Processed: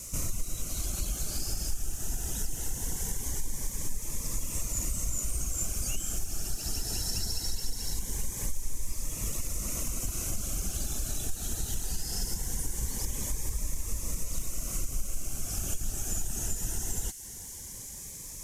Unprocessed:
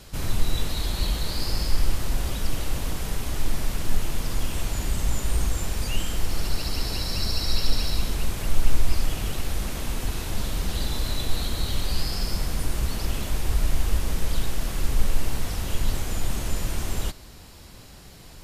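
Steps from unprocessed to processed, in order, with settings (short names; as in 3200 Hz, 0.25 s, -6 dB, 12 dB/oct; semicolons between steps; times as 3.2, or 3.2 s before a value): compressor 3:1, threshold -26 dBFS, peak gain reduction 13 dB; reverb removal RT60 0.53 s; band noise 1700–13000 Hz -52 dBFS; resonant high shelf 5200 Hz +7.5 dB, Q 3; cascading phaser rising 0.21 Hz; gain -2 dB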